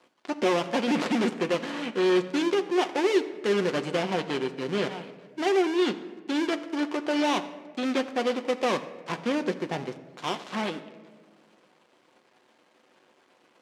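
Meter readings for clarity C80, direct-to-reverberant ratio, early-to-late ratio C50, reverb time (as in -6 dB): 14.5 dB, 7.5 dB, 13.0 dB, 1.5 s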